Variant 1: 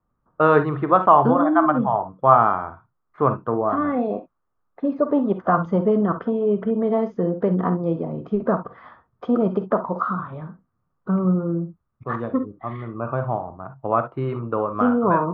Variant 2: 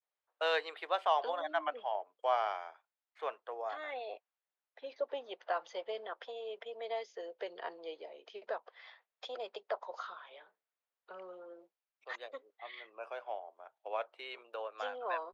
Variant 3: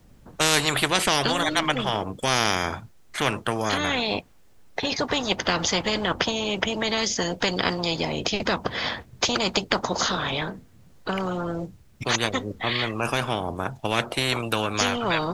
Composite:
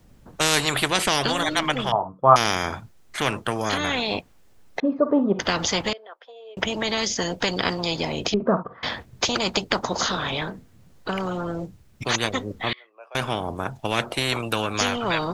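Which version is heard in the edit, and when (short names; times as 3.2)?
3
1.92–2.36 from 1
4.8–5.39 from 1
5.93–6.57 from 2
8.34–8.83 from 1
12.73–13.15 from 2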